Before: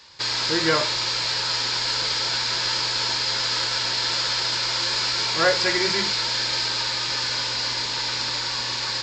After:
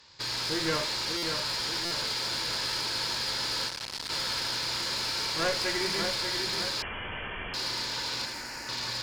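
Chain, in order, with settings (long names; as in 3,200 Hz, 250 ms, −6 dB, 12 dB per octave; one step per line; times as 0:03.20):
asymmetric clip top −24 dBFS
0:08.25–0:08.69: phaser with its sweep stopped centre 710 Hz, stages 8
on a send: echo with a time of its own for lows and highs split 2,300 Hz, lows 588 ms, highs 82 ms, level −6 dB
0:06.82–0:07.54: on the sum: voice inversion scrambler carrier 3,300 Hz
low-shelf EQ 350 Hz +4.5 dB
buffer that repeats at 0:01.17/0:01.85, samples 256, times 9
0:03.68–0:04.10: saturating transformer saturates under 3,100 Hz
level −7.5 dB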